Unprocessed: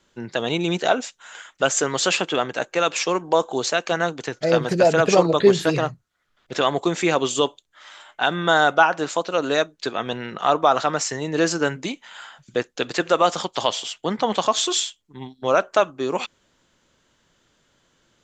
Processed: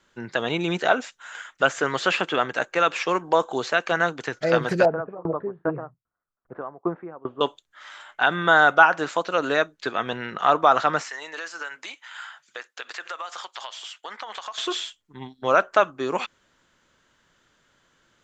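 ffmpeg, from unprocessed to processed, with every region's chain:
ffmpeg -i in.wav -filter_complex "[0:a]asettb=1/sr,asplit=3[link_01][link_02][link_03];[link_01]atrim=end=4.854[link_04];[link_02]atrim=start=4.85:end=7.41,asetpts=PTS-STARTPTS,afade=type=in:duration=0.004:curve=qsin,afade=type=out:start_time=2.556:duration=0.004:curve=qsin,lowpass=frequency=1200:width=0.5412,lowpass=frequency=1200:width=1.3066,aeval=exprs='val(0)*pow(10,-26*if(lt(mod(2.5*n/s,1),2*abs(2.5)/1000),1-mod(2.5*n/s,1)/(2*abs(2.5)/1000),(mod(2.5*n/s,1)-2*abs(2.5)/1000)/(1-2*abs(2.5)/1000))/20)':channel_layout=same[link_05];[link_03]atrim=start=7.406[link_06];[link_04][link_05]acrossfade=duration=0.004:curve1=hsin:curve2=qsin[link_07];[link_07][link_06]acrossfade=duration=0.004:curve1=qsin:curve2=hsin,asettb=1/sr,asplit=3[link_08][link_09][link_10];[link_08]atrim=end=11.094[link_11];[link_09]atrim=start=11.09:end=14.58,asetpts=PTS-STARTPTS,afade=type=in:duration=0.004:curve=qsin,afade=type=out:start_time=3.486:duration=0.004:curve=qsin,highpass=880,acompressor=threshold=-30dB:ratio=12:attack=3.2:release=140:knee=1:detection=peak[link_12];[link_10]atrim=start=14.576[link_13];[link_11][link_12]acrossfade=duration=0.004:curve1=hsin:curve2=qsin[link_14];[link_14][link_13]acrossfade=duration=0.004:curve1=qsin:curve2=hsin,acrossover=split=3700[link_15][link_16];[link_16]acompressor=threshold=-38dB:ratio=4:attack=1:release=60[link_17];[link_15][link_17]amix=inputs=2:normalize=0,equalizer=frequency=1500:width_type=o:width=1.3:gain=6.5,volume=-3dB" out.wav

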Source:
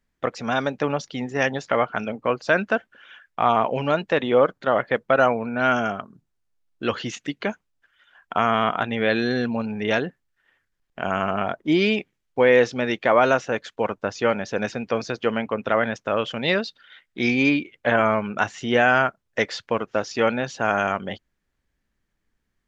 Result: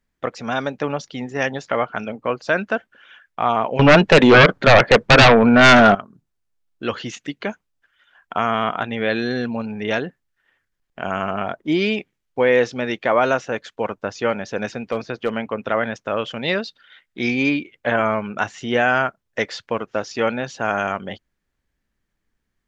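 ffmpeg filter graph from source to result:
ffmpeg -i in.wav -filter_complex "[0:a]asettb=1/sr,asplit=3[link_01][link_02][link_03];[link_01]atrim=end=3.794[link_04];[link_02]atrim=start=3.79:end=5.95,asetpts=PTS-STARTPTS,afade=type=in:duration=0.004:curve=qsin,afade=type=out:start_time=2.156:duration=0.004:curve=qsin,lowpass=frequency=2200:poles=1,aeval=exprs='0.531*sin(PI/2*4.47*val(0)/0.531)':channel_layout=same[link_05];[link_03]atrim=start=5.946[link_06];[link_04][link_05]acrossfade=duration=0.004:curve1=hsin:curve2=qsin[link_07];[link_07][link_06]acrossfade=duration=0.004:curve1=qsin:curve2=hsin,asettb=1/sr,asplit=3[link_08][link_09][link_10];[link_08]atrim=end=14.774[link_11];[link_09]atrim=start=14.77:end=15.33,asetpts=PTS-STARTPTS,afade=type=in:duration=0.004:curve=qsin,afade=type=out:start_time=0.556:duration=0.004:curve=qsin,acrossover=split=3700[link_12][link_13];[link_13]acompressor=threshold=-52dB:ratio=4:attack=1:release=60[link_14];[link_12][link_14]amix=inputs=2:normalize=0,asoftclip=type=hard:threshold=-12.5dB[link_15];[link_10]atrim=start=15.326[link_16];[link_11][link_15]acrossfade=duration=0.004:curve1=hsin:curve2=qsin[link_17];[link_17][link_16]acrossfade=duration=0.004:curve1=qsin:curve2=hsin" out.wav

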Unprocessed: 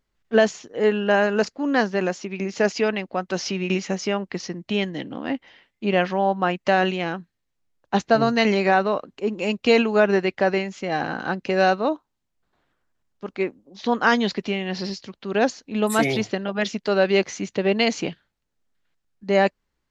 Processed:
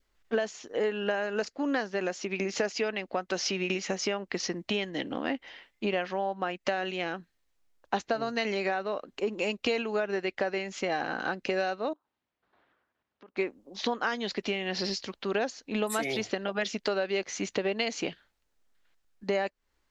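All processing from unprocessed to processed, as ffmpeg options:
ffmpeg -i in.wav -filter_complex "[0:a]asettb=1/sr,asplit=3[link_01][link_02][link_03];[link_01]atrim=end=11.934[link_04];[link_02]atrim=start=11.93:end=13.37,asetpts=PTS-STARTPTS,afade=type=in:duration=0.004:curve=qsin,afade=type=out:start_time=1.436:duration=0.004:curve=qsin,acompressor=threshold=-51dB:ratio=6:attack=3.2:release=140:knee=1:detection=peak,highpass=100,lowpass=3100[link_05];[link_03]atrim=start=13.366[link_06];[link_04][link_05]acrossfade=duration=0.004:curve1=hsin:curve2=qsin[link_07];[link_07][link_06]acrossfade=duration=0.004:curve1=qsin:curve2=hsin,equalizer=frequency=140:width_type=o:width=1.7:gain=-10,acompressor=threshold=-30dB:ratio=6,adynamicequalizer=threshold=0.00282:dfrequency=990:dqfactor=2.5:tfrequency=990:tqfactor=2.5:attack=5:release=100:ratio=0.375:range=2.5:mode=cutabove:tftype=bell,volume=3.5dB" out.wav

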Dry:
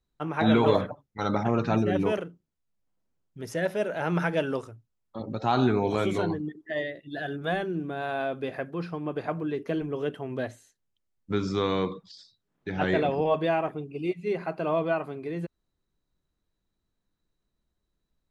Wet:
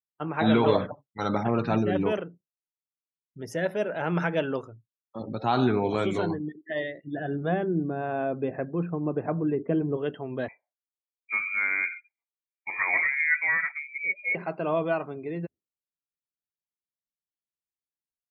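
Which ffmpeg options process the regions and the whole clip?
ffmpeg -i in.wav -filter_complex "[0:a]asettb=1/sr,asplit=3[link_01][link_02][link_03];[link_01]atrim=end=7.044[link_04];[link_02]atrim=start=7.04:end=9.97,asetpts=PTS-STARTPTS,afade=type=in:duration=0.004:curve=qsin,afade=type=out:start_time=2.926:duration=0.004:curve=qsin,lowpass=frequency=3300:width=0.5412,lowpass=frequency=3300:width=1.3066,tiltshelf=frequency=780:gain=6[link_05];[link_03]atrim=start=9.966[link_06];[link_04][link_05]acrossfade=duration=0.004:curve1=hsin:curve2=qsin[link_07];[link_07][link_06]acrossfade=duration=0.004:curve1=qsin:curve2=hsin,asettb=1/sr,asplit=3[link_08][link_09][link_10];[link_08]atrim=end=10.484[link_11];[link_09]atrim=start=10.48:end=14.35,asetpts=PTS-STARTPTS,afade=type=in:duration=0.004:curve=qsin,afade=type=out:start_time=3.866:duration=0.004:curve=qsin,highpass=frequency=190:width=0.5412,highpass=frequency=190:width=1.3066,lowpass=frequency=2200:width_type=q:width=0.5098,lowpass=frequency=2200:width_type=q:width=0.6013,lowpass=frequency=2200:width_type=q:width=0.9,lowpass=frequency=2200:width_type=q:width=2.563,afreqshift=-2600[link_12];[link_10]atrim=start=14.346[link_13];[link_11][link_12]acrossfade=duration=0.004:curve1=hsin:curve2=qsin[link_14];[link_14][link_13]acrossfade=duration=0.004:curve1=qsin:curve2=hsin,afftdn=noise_reduction=28:noise_floor=-51,highpass=86" out.wav

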